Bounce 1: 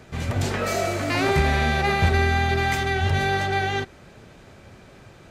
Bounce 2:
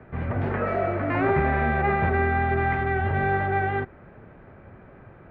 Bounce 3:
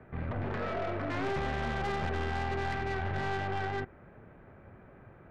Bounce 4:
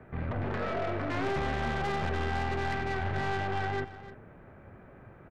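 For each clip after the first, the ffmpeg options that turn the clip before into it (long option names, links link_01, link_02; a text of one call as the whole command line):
ffmpeg -i in.wav -filter_complex "[0:a]lowpass=frequency=1900:width=0.5412,lowpass=frequency=1900:width=1.3066,acrossover=split=140|1100[link_01][link_02][link_03];[link_01]alimiter=level_in=1dB:limit=-24dB:level=0:latency=1,volume=-1dB[link_04];[link_04][link_02][link_03]amix=inputs=3:normalize=0" out.wav
ffmpeg -i in.wav -af "aeval=exprs='(tanh(20*val(0)+0.5)-tanh(0.5))/20':channel_layout=same,volume=-4dB" out.wav
ffmpeg -i in.wav -filter_complex "[0:a]asplit=2[link_01][link_02];[link_02]volume=30dB,asoftclip=hard,volume=-30dB,volume=-12dB[link_03];[link_01][link_03]amix=inputs=2:normalize=0,aecho=1:1:302:0.178" out.wav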